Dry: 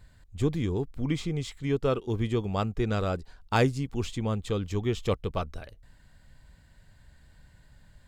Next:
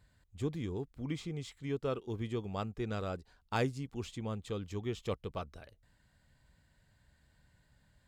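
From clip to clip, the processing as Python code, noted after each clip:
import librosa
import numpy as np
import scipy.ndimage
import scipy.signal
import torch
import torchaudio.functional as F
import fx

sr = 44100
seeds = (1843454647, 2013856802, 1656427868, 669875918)

y = fx.highpass(x, sr, hz=72.0, slope=6)
y = y * 10.0 ** (-8.5 / 20.0)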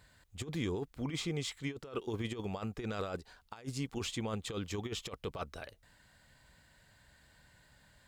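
y = fx.low_shelf(x, sr, hz=320.0, db=-9.5)
y = fx.over_compress(y, sr, threshold_db=-43.0, ratio=-0.5)
y = y * 10.0 ** (6.5 / 20.0)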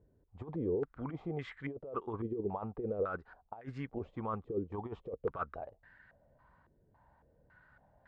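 y = fx.filter_held_lowpass(x, sr, hz=3.6, low_hz=400.0, high_hz=1700.0)
y = y * 10.0 ** (-3.5 / 20.0)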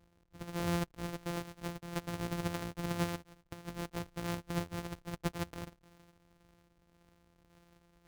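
y = np.r_[np.sort(x[:len(x) // 256 * 256].reshape(-1, 256), axis=1).ravel(), x[len(x) // 256 * 256:]]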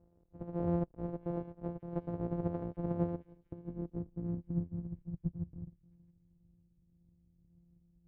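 y = fx.echo_stepped(x, sr, ms=669, hz=2700.0, octaves=0.7, feedback_pct=70, wet_db=-9.5)
y = fx.filter_sweep_lowpass(y, sr, from_hz=570.0, to_hz=160.0, start_s=2.91, end_s=5.27, q=1.2)
y = y * 10.0 ** (1.0 / 20.0)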